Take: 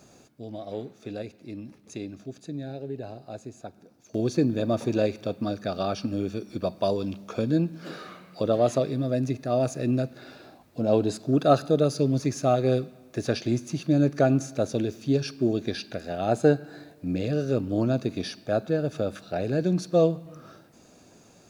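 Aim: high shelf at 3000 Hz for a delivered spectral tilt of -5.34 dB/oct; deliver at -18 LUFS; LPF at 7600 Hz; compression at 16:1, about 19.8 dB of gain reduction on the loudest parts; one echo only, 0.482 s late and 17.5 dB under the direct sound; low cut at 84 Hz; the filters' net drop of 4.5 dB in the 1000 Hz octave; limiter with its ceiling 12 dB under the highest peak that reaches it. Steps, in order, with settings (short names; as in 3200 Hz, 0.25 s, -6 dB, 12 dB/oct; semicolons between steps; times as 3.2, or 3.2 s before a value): HPF 84 Hz; LPF 7600 Hz; bell 1000 Hz -8.5 dB; high shelf 3000 Hz +4 dB; compressor 16:1, threshold -35 dBFS; limiter -34 dBFS; echo 0.482 s -17.5 dB; gain +27 dB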